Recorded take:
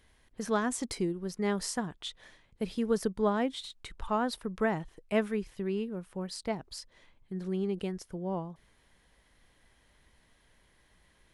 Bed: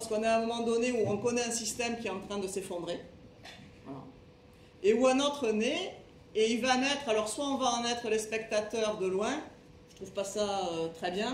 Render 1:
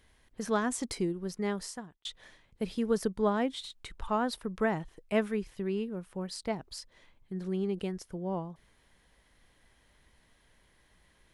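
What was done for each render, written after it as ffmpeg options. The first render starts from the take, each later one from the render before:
-filter_complex "[0:a]asplit=2[a][b];[a]atrim=end=2.05,asetpts=PTS-STARTPTS,afade=t=out:st=1.32:d=0.73[c];[b]atrim=start=2.05,asetpts=PTS-STARTPTS,afade=t=in:d=0.004:c=hsin[d];[c][d]concat=n=2:v=0:a=1"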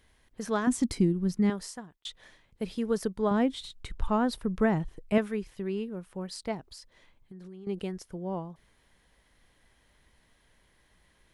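-filter_complex "[0:a]asettb=1/sr,asplit=3[a][b][c];[a]atrim=end=0.674[d];[b]atrim=start=0.67:end=1.5,asetpts=PTS-STARTPTS,afade=t=in:d=0.004:c=qsin,afade=t=out:st=0.826:d=0.004:c=qsin,lowshelf=f=340:t=q:w=1.5:g=8.5[e];[c]atrim=start=1.496[f];[d][e]acrossfade=d=0.004:c1=hsin:c2=qsin[g];[g][f]acrossfade=d=0.004:c1=qsin:c2=hsin,asettb=1/sr,asplit=3[h][i][j];[h]atrim=end=3.314[k];[i]atrim=start=3.31:end=5.18,asetpts=PTS-STARTPTS,afade=t=in:d=0.004:c=qsin,afade=t=out:st=1.866:d=0.004:c=qsin,lowshelf=f=270:g=11[l];[j]atrim=start=5.176[m];[k][l]acrossfade=d=0.004:c1=hsin:c2=qsin[n];[n][m]acrossfade=d=0.004:c1=qsin:c2=hsin,asettb=1/sr,asplit=3[o][p][q];[o]atrim=end=6.604[r];[p]atrim=start=6.6:end=7.67,asetpts=PTS-STARTPTS,afade=t=in:d=0.004:c=qsin,afade=t=out:st=1.066:d=0.004:c=qsin,acompressor=threshold=-43dB:ratio=6:attack=3.2:release=140:knee=1:detection=peak[s];[q]atrim=start=7.666[t];[r][s]acrossfade=d=0.004:c1=hsin:c2=qsin[u];[u][t]acrossfade=d=0.004:c1=qsin:c2=hsin"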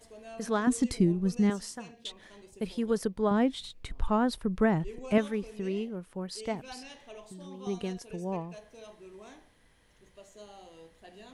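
-filter_complex "[1:a]volume=-18dB[a];[0:a][a]amix=inputs=2:normalize=0"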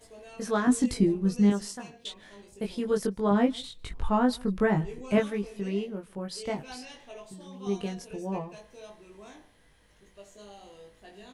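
-filter_complex "[0:a]asplit=2[a][b];[b]adelay=20,volume=-2.5dB[c];[a][c]amix=inputs=2:normalize=0,asplit=2[d][e];[e]adelay=151.6,volume=-26dB,highshelf=f=4k:g=-3.41[f];[d][f]amix=inputs=2:normalize=0"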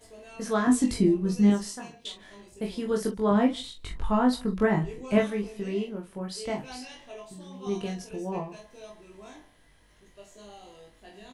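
-af "aecho=1:1:23|44:0.473|0.335"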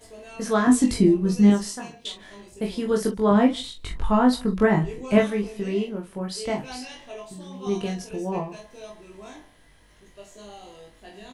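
-af "volume=4.5dB"

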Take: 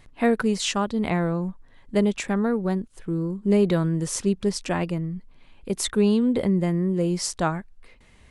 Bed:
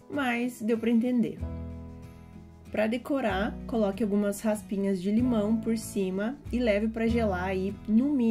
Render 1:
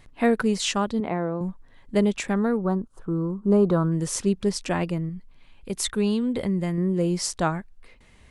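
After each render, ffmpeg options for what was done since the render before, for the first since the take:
-filter_complex "[0:a]asettb=1/sr,asplit=3[a][b][c];[a]atrim=end=1.004[d];[b]atrim=start=1:end=1.41,asetpts=PTS-STARTPTS,afade=t=in:d=0.004:c=qsin,afade=t=out:st=0.406:d=0.004:c=qsin,bandpass=f=550:t=q:w=0.6[e];[c]atrim=start=1.406[f];[d][e]acrossfade=d=0.004:c1=hsin:c2=qsin[g];[g][f]acrossfade=d=0.004:c1=qsin:c2=hsin,asettb=1/sr,asplit=3[h][i][j];[h]atrim=end=2.574[k];[i]atrim=start=2.57:end=3.92,asetpts=PTS-STARTPTS,afade=t=in:d=0.004:c=qsin,afade=t=out:st=1.346:d=0.004:c=qsin,highshelf=f=1.6k:t=q:w=3:g=-8.5[l];[j]atrim=start=3.916[m];[k][l]acrossfade=d=0.004:c1=hsin:c2=qsin[n];[n][m]acrossfade=d=0.004:c1=qsin:c2=hsin,asettb=1/sr,asplit=3[o][p][q];[o]atrim=end=5.094[r];[p]atrim=start=5.09:end=6.78,asetpts=PTS-STARTPTS,afade=t=in:d=0.004:c=qsin,afade=t=out:st=1.686:d=0.004:c=qsin,equalizer=f=380:w=0.43:g=-4.5[s];[q]atrim=start=6.776[t];[r][s]acrossfade=d=0.004:c1=hsin:c2=qsin[u];[u][t]acrossfade=d=0.004:c1=qsin:c2=hsin"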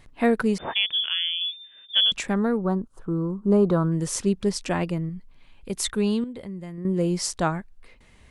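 -filter_complex "[0:a]asettb=1/sr,asplit=3[a][b][c];[a]atrim=end=0.584[d];[b]atrim=start=0.58:end=2.12,asetpts=PTS-STARTPTS,afade=t=in:d=0.004:c=qsin,afade=t=out:st=1.536:d=0.004:c=qsin,lowpass=f=3.1k:t=q:w=0.5098,lowpass=f=3.1k:t=q:w=0.6013,lowpass=f=3.1k:t=q:w=0.9,lowpass=f=3.1k:t=q:w=2.563,afreqshift=-3600[e];[c]atrim=start=2.116[f];[d][e]acrossfade=d=0.004:c1=hsin:c2=qsin[g];[g][f]acrossfade=d=0.004:c1=qsin:c2=hsin,asplit=3[h][i][j];[h]atrim=end=6.242[k];[i]atrim=start=6.238:end=6.852,asetpts=PTS-STARTPTS,volume=-10.5dB[l];[j]atrim=start=6.848[m];[k][l]acrossfade=d=0.004:c1=hsin:c2=hsin[n];[n][m]acrossfade=d=0.004:c1=hsin:c2=hsin"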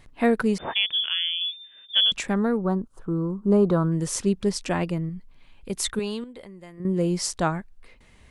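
-filter_complex "[0:a]asettb=1/sr,asplit=3[a][b][c];[a]atrim=end=5.994[d];[b]atrim=start=5.99:end=6.8,asetpts=PTS-STARTPTS,afade=t=in:d=0.004:c=qsin,afade=t=out:st=0.806:d=0.004:c=qsin,equalizer=f=130:w=0.56:g=-12.5[e];[c]atrim=start=6.796[f];[d][e]acrossfade=d=0.004:c1=hsin:c2=qsin[g];[g][f]acrossfade=d=0.004:c1=qsin:c2=hsin"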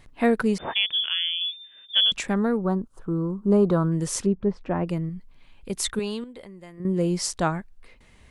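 -filter_complex "[0:a]asettb=1/sr,asplit=3[a][b][c];[a]atrim=end=4.264[d];[b]atrim=start=4.26:end=4.87,asetpts=PTS-STARTPTS,afade=t=in:d=0.004:c=qsin,afade=t=out:st=0.606:d=0.004:c=qsin,lowpass=1.2k[e];[c]atrim=start=4.866[f];[d][e]acrossfade=d=0.004:c1=hsin:c2=qsin[g];[g][f]acrossfade=d=0.004:c1=qsin:c2=hsin"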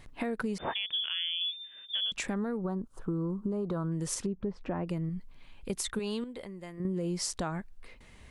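-af "alimiter=limit=-20dB:level=0:latency=1:release=208,acompressor=threshold=-29dB:ratio=6"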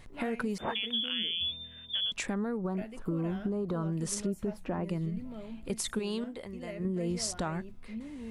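-filter_complex "[1:a]volume=-17.5dB[a];[0:a][a]amix=inputs=2:normalize=0"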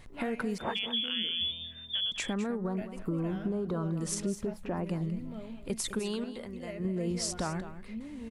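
-af "aecho=1:1:207:0.237"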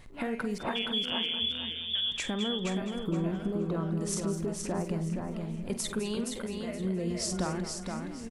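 -filter_complex "[0:a]asplit=2[a][b];[b]adelay=48,volume=-12.5dB[c];[a][c]amix=inputs=2:normalize=0,aecho=1:1:471|942|1413:0.562|0.129|0.0297"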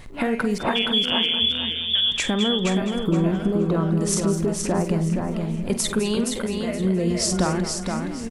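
-af "volume=10dB"

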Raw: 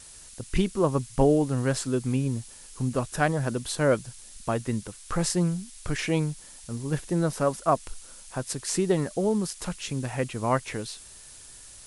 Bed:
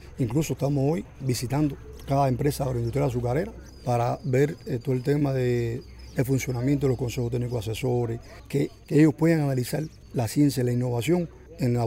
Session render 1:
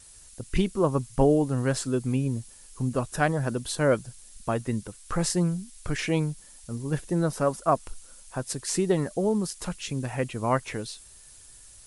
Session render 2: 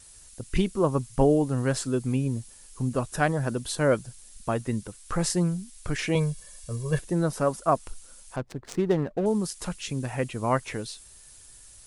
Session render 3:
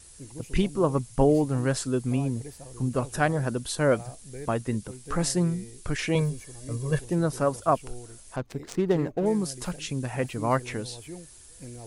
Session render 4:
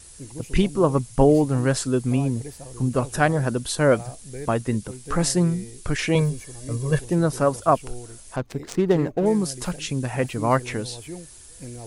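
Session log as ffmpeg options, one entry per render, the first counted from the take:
-af "afftdn=nr=6:nf=-48"
-filter_complex "[0:a]asettb=1/sr,asplit=3[a][b][c];[a]atrim=end=6.154[d];[b]atrim=start=6.15:end=6.99,asetpts=PTS-STARTPTS,afade=t=in:d=0.004:c=qsin,afade=t=out:st=0.836:d=0.004:c=qsin,aecho=1:1:1.8:0.96,atrim=end_sample=37044[e];[c]atrim=start=6.986[f];[d][e]acrossfade=d=0.004:c1=hsin:c2=qsin[g];[g][f]acrossfade=d=0.004:c1=qsin:c2=hsin,asettb=1/sr,asplit=3[h][i][j];[h]atrim=end=8.364[k];[i]atrim=start=8.36:end=9.26,asetpts=PTS-STARTPTS,afade=t=in:d=0.004:c=qsin,afade=t=out:st=0.896:d=0.004:c=qsin,adynamicsmooth=sensitivity=4.5:basefreq=580[l];[j]atrim=start=9.256[m];[k][l]acrossfade=d=0.004:c1=hsin:c2=qsin[n];[n][m]acrossfade=d=0.004:c1=qsin:c2=hsin"
-filter_complex "[1:a]volume=-18.5dB[a];[0:a][a]amix=inputs=2:normalize=0"
-af "volume=4.5dB"

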